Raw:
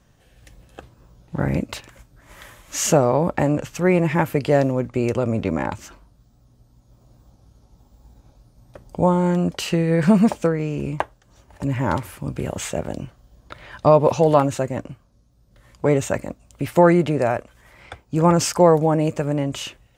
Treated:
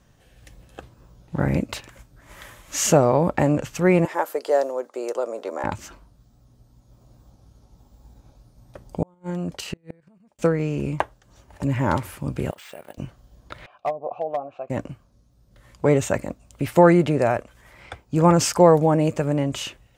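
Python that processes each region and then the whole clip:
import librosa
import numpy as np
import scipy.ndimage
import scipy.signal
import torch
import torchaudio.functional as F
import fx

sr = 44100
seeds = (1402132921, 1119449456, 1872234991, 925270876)

y = fx.chain(x, sr, fx.highpass(hz=440.0, slope=24),
    fx.peak_eq(hz=2400.0, db=-13.0, octaves=0.86), at=(4.05, 5.64))
y = fx.chain(y, sr, fx.level_steps(step_db=9),
    fx.gate_flip(shuts_db=-15.0, range_db=-37), at=(9.02, 10.39))
y = fx.chain(y, sr, fx.highpass(hz=1500.0, slope=6),
    fx.level_steps(step_db=13),
    fx.resample_bad(factor=4, down='filtered', up='hold'), at=(12.51, 12.98))
y = fx.chain(y, sr, fx.env_lowpass_down(base_hz=320.0, full_db=-8.5),
    fx.vowel_filter(vowel='a'),
    fx.clip_hard(threshold_db=-18.0), at=(13.66, 14.7))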